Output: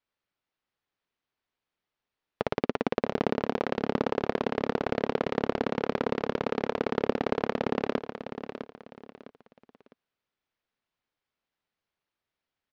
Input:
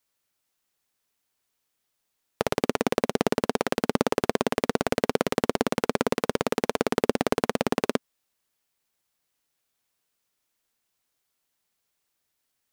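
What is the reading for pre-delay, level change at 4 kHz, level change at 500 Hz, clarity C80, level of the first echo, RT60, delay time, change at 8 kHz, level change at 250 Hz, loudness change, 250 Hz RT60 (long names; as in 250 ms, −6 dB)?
no reverb audible, −8.0 dB, −3.0 dB, no reverb audible, −9.5 dB, no reverb audible, 656 ms, below −20 dB, −3.0 dB, −3.5 dB, no reverb audible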